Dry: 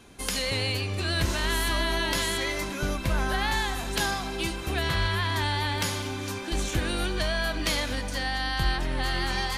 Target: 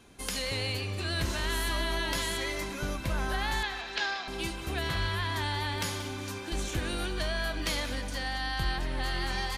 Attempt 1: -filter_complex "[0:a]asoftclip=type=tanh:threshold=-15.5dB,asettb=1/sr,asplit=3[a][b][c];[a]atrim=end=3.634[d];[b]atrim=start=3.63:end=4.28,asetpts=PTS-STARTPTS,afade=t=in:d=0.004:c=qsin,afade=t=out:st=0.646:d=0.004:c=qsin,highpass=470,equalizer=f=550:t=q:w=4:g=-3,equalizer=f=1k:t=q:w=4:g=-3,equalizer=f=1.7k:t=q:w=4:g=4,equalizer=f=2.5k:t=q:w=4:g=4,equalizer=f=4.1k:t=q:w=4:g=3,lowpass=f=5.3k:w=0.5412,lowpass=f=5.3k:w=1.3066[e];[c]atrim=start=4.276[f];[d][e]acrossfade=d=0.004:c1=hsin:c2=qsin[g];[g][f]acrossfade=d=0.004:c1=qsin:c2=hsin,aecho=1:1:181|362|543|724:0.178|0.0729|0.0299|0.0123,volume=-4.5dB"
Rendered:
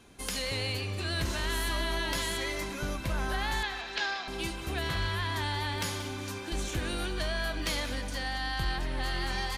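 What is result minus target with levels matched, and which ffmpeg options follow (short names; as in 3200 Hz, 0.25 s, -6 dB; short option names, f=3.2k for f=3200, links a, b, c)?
soft clip: distortion +14 dB
-filter_complex "[0:a]asoftclip=type=tanh:threshold=-8dB,asettb=1/sr,asplit=3[a][b][c];[a]atrim=end=3.634[d];[b]atrim=start=3.63:end=4.28,asetpts=PTS-STARTPTS,afade=t=in:d=0.004:c=qsin,afade=t=out:st=0.646:d=0.004:c=qsin,highpass=470,equalizer=f=550:t=q:w=4:g=-3,equalizer=f=1k:t=q:w=4:g=-3,equalizer=f=1.7k:t=q:w=4:g=4,equalizer=f=2.5k:t=q:w=4:g=4,equalizer=f=4.1k:t=q:w=4:g=3,lowpass=f=5.3k:w=0.5412,lowpass=f=5.3k:w=1.3066[e];[c]atrim=start=4.276[f];[d][e]acrossfade=d=0.004:c1=hsin:c2=qsin[g];[g][f]acrossfade=d=0.004:c1=qsin:c2=hsin,aecho=1:1:181|362|543|724:0.178|0.0729|0.0299|0.0123,volume=-4.5dB"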